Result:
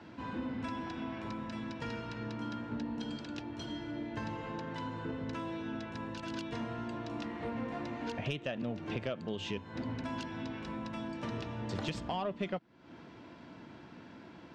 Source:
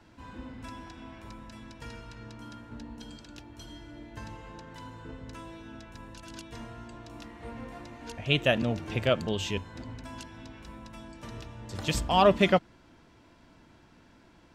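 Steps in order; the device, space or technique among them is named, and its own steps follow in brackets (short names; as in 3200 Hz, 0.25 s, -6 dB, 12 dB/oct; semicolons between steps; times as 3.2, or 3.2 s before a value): AM radio (BPF 150–4300 Hz; compressor 6:1, threshold -41 dBFS, peak gain reduction 23 dB; soft clip -29.5 dBFS, distortion -25 dB); low shelf 390 Hz +5 dB; gain +5 dB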